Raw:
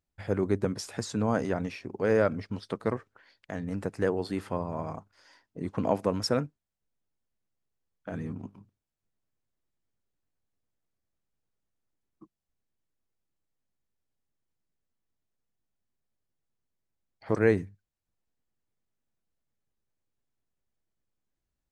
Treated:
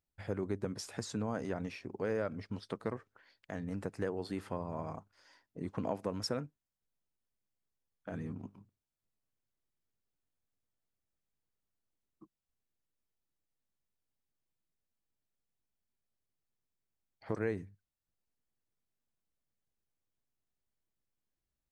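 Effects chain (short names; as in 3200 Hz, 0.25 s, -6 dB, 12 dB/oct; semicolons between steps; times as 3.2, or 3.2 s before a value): compressor 2.5:1, threshold -28 dBFS, peak gain reduction 8 dB; gain -5 dB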